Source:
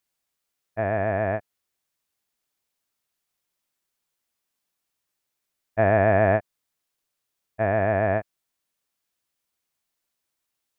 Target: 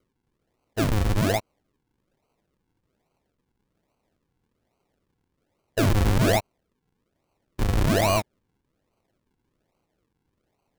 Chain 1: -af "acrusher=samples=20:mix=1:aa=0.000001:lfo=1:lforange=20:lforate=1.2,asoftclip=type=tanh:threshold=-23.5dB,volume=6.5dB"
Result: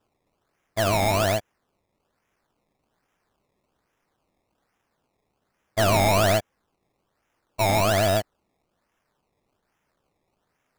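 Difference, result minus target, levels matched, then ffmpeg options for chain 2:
decimation with a swept rate: distortion -11 dB
-af "acrusher=samples=49:mix=1:aa=0.000001:lfo=1:lforange=49:lforate=1.2,asoftclip=type=tanh:threshold=-23.5dB,volume=6.5dB"

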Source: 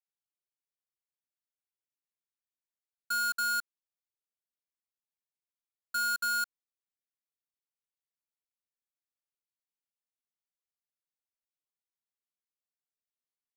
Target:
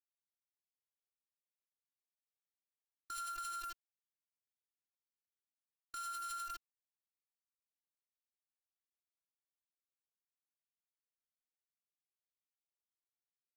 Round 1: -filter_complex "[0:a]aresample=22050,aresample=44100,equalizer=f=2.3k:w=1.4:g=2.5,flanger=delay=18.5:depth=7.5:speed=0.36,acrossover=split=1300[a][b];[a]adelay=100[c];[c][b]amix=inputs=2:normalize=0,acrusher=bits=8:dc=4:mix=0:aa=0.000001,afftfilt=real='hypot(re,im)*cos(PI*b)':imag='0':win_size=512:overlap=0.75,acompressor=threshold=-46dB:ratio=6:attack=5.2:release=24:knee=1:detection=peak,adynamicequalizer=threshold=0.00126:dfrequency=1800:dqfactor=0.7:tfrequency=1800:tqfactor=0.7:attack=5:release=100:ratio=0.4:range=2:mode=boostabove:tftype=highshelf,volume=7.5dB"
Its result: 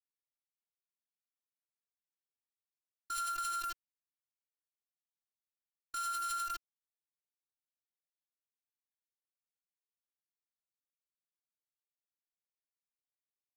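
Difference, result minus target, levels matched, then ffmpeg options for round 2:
compressor: peak gain reduction -6 dB
-filter_complex "[0:a]aresample=22050,aresample=44100,equalizer=f=2.3k:w=1.4:g=2.5,flanger=delay=18.5:depth=7.5:speed=0.36,acrossover=split=1300[a][b];[a]adelay=100[c];[c][b]amix=inputs=2:normalize=0,acrusher=bits=8:dc=4:mix=0:aa=0.000001,afftfilt=real='hypot(re,im)*cos(PI*b)':imag='0':win_size=512:overlap=0.75,acompressor=threshold=-53.5dB:ratio=6:attack=5.2:release=24:knee=1:detection=peak,adynamicequalizer=threshold=0.00126:dfrequency=1800:dqfactor=0.7:tfrequency=1800:tqfactor=0.7:attack=5:release=100:ratio=0.4:range=2:mode=boostabove:tftype=highshelf,volume=7.5dB"

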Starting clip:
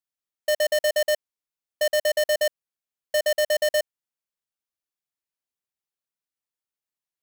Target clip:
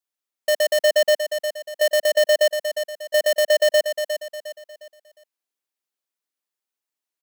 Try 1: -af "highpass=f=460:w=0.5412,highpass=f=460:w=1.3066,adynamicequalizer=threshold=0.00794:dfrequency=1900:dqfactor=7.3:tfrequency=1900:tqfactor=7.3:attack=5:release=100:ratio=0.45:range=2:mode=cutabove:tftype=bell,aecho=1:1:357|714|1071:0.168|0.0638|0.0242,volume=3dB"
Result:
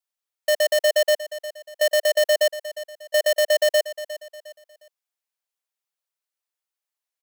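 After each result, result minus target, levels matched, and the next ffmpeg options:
250 Hz band -12.0 dB; echo-to-direct -7 dB
-af "highpass=f=220:w=0.5412,highpass=f=220:w=1.3066,adynamicequalizer=threshold=0.00794:dfrequency=1900:dqfactor=7.3:tfrequency=1900:tqfactor=7.3:attack=5:release=100:ratio=0.45:range=2:mode=cutabove:tftype=bell,aecho=1:1:357|714|1071:0.168|0.0638|0.0242,volume=3dB"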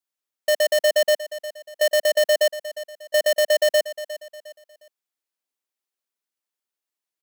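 echo-to-direct -7 dB
-af "highpass=f=220:w=0.5412,highpass=f=220:w=1.3066,adynamicequalizer=threshold=0.00794:dfrequency=1900:dqfactor=7.3:tfrequency=1900:tqfactor=7.3:attack=5:release=100:ratio=0.45:range=2:mode=cutabove:tftype=bell,aecho=1:1:357|714|1071|1428:0.376|0.143|0.0543|0.0206,volume=3dB"

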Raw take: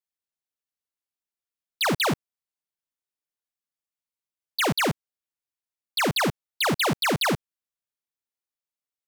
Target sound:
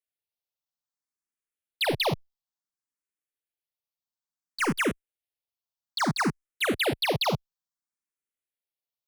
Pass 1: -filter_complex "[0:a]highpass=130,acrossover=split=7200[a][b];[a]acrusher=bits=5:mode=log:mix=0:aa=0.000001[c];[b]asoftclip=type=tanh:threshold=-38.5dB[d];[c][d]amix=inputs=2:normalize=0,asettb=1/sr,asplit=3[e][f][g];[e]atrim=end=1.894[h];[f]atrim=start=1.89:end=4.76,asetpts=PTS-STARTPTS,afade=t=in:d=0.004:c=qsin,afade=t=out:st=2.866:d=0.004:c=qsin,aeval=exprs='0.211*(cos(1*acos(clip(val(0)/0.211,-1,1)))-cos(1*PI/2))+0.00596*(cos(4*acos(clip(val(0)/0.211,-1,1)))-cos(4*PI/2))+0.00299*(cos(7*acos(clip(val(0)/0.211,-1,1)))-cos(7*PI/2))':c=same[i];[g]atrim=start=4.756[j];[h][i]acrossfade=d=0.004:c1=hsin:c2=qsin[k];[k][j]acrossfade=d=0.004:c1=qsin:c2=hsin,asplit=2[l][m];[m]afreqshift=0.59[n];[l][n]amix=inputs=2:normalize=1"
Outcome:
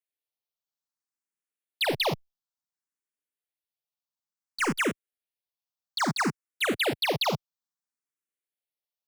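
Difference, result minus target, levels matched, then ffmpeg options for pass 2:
125 Hz band -2.5 dB
-filter_complex "[0:a]acrossover=split=7200[a][b];[a]acrusher=bits=5:mode=log:mix=0:aa=0.000001[c];[b]asoftclip=type=tanh:threshold=-38.5dB[d];[c][d]amix=inputs=2:normalize=0,asettb=1/sr,asplit=3[e][f][g];[e]atrim=end=1.894[h];[f]atrim=start=1.89:end=4.76,asetpts=PTS-STARTPTS,afade=t=in:d=0.004:c=qsin,afade=t=out:st=2.866:d=0.004:c=qsin,aeval=exprs='0.211*(cos(1*acos(clip(val(0)/0.211,-1,1)))-cos(1*PI/2))+0.00596*(cos(4*acos(clip(val(0)/0.211,-1,1)))-cos(4*PI/2))+0.00299*(cos(7*acos(clip(val(0)/0.211,-1,1)))-cos(7*PI/2))':c=same[i];[g]atrim=start=4.756[j];[h][i]acrossfade=d=0.004:c1=hsin:c2=qsin[k];[k][j]acrossfade=d=0.004:c1=qsin:c2=hsin,asplit=2[l][m];[m]afreqshift=0.59[n];[l][n]amix=inputs=2:normalize=1"

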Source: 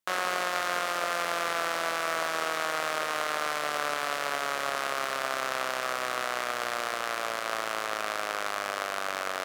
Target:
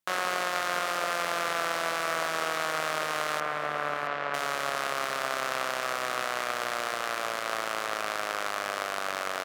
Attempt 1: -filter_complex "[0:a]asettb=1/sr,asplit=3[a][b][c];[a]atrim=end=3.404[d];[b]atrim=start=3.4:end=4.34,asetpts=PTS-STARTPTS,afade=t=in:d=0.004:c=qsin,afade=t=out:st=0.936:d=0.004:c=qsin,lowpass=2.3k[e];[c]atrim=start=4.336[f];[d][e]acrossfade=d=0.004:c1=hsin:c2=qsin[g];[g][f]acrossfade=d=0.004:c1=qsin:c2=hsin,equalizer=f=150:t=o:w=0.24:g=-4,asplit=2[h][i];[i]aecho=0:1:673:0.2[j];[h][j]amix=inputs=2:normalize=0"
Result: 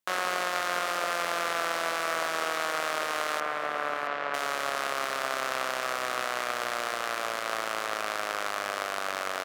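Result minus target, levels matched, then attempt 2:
125 Hz band -5.0 dB
-filter_complex "[0:a]asettb=1/sr,asplit=3[a][b][c];[a]atrim=end=3.404[d];[b]atrim=start=3.4:end=4.34,asetpts=PTS-STARTPTS,afade=t=in:d=0.004:c=qsin,afade=t=out:st=0.936:d=0.004:c=qsin,lowpass=2.3k[e];[c]atrim=start=4.336[f];[d][e]acrossfade=d=0.004:c1=hsin:c2=qsin[g];[g][f]acrossfade=d=0.004:c1=qsin:c2=hsin,equalizer=f=150:t=o:w=0.24:g=7,asplit=2[h][i];[i]aecho=0:1:673:0.2[j];[h][j]amix=inputs=2:normalize=0"

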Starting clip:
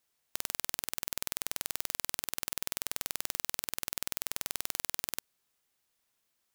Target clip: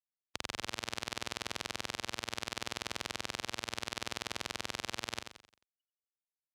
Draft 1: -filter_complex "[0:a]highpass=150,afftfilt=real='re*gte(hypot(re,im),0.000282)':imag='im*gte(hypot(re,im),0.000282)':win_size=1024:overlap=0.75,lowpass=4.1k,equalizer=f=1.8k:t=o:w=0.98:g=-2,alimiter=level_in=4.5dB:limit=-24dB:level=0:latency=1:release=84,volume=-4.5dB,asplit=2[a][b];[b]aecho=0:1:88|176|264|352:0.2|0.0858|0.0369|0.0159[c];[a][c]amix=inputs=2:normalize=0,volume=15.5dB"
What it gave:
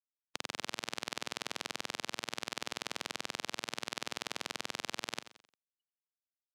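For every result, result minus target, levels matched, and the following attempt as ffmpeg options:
125 Hz band -4.5 dB; echo-to-direct -6 dB
-filter_complex "[0:a]highpass=59,afftfilt=real='re*gte(hypot(re,im),0.000282)':imag='im*gte(hypot(re,im),0.000282)':win_size=1024:overlap=0.75,lowpass=4.1k,equalizer=f=1.8k:t=o:w=0.98:g=-2,alimiter=level_in=4.5dB:limit=-24dB:level=0:latency=1:release=84,volume=-4.5dB,asplit=2[a][b];[b]aecho=0:1:88|176|264|352:0.2|0.0858|0.0369|0.0159[c];[a][c]amix=inputs=2:normalize=0,volume=15.5dB"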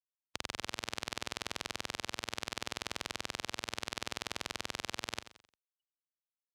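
echo-to-direct -6 dB
-filter_complex "[0:a]highpass=59,afftfilt=real='re*gte(hypot(re,im),0.000282)':imag='im*gte(hypot(re,im),0.000282)':win_size=1024:overlap=0.75,lowpass=4.1k,equalizer=f=1.8k:t=o:w=0.98:g=-2,alimiter=level_in=4.5dB:limit=-24dB:level=0:latency=1:release=84,volume=-4.5dB,asplit=2[a][b];[b]aecho=0:1:88|176|264|352|440:0.398|0.171|0.0736|0.0317|0.0136[c];[a][c]amix=inputs=2:normalize=0,volume=15.5dB"

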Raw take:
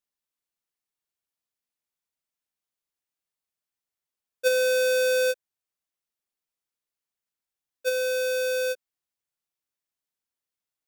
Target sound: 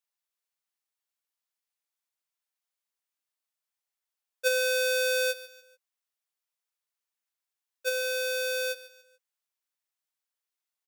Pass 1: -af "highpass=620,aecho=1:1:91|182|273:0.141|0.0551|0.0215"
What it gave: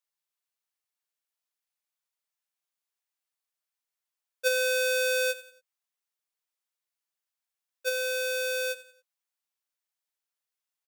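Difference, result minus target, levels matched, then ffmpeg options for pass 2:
echo 53 ms early
-af "highpass=620,aecho=1:1:144|288|432:0.141|0.0551|0.0215"

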